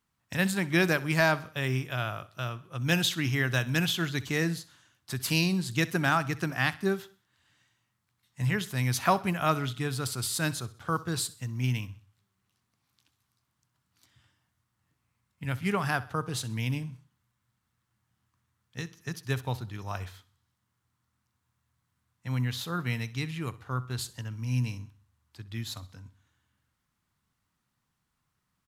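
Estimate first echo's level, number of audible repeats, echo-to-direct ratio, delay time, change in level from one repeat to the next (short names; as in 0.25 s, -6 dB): -19.0 dB, 3, -18.0 dB, 64 ms, -7.0 dB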